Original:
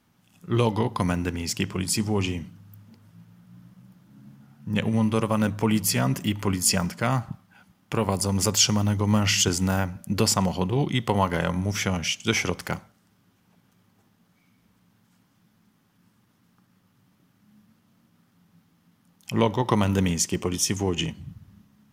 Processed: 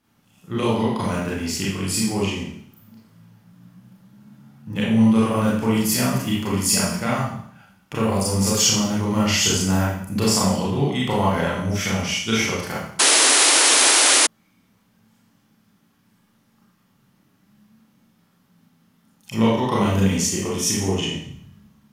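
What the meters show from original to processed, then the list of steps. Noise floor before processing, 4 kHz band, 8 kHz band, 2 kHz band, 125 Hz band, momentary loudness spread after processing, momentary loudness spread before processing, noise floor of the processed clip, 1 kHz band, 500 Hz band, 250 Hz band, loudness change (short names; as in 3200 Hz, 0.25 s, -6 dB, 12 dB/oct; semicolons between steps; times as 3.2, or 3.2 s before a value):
-65 dBFS, +8.0 dB, +8.5 dB, +7.5 dB, +1.5 dB, 13 LU, 10 LU, -62 dBFS, +4.5 dB, +4.0 dB, +5.0 dB, +5.5 dB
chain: Schroeder reverb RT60 0.63 s, combs from 28 ms, DRR -6.5 dB; painted sound noise, 12.99–14.27, 250–11000 Hz -11 dBFS; gain -4 dB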